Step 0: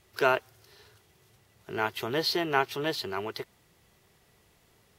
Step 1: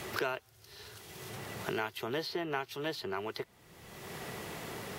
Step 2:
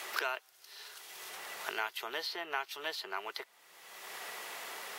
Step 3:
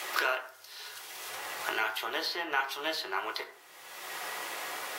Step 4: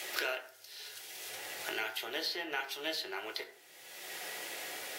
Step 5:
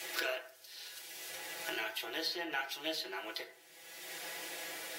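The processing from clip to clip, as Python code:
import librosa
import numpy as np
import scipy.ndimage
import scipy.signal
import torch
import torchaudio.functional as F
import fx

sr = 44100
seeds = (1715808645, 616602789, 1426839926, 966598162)

y1 = fx.band_squash(x, sr, depth_pct=100)
y1 = y1 * librosa.db_to_amplitude(-6.0)
y2 = scipy.signal.sosfilt(scipy.signal.butter(2, 800.0, 'highpass', fs=sr, output='sos'), y1)
y2 = y2 * librosa.db_to_amplitude(2.0)
y3 = fx.rev_fdn(y2, sr, rt60_s=0.56, lf_ratio=1.0, hf_ratio=0.55, size_ms=56.0, drr_db=2.0)
y3 = y3 * librosa.db_to_amplitude(4.0)
y4 = fx.peak_eq(y3, sr, hz=1100.0, db=-14.5, octaves=0.69)
y4 = y4 * librosa.db_to_amplitude(-1.5)
y5 = y4 + 0.97 * np.pad(y4, (int(6.0 * sr / 1000.0), 0))[:len(y4)]
y5 = y5 * librosa.db_to_amplitude(-4.0)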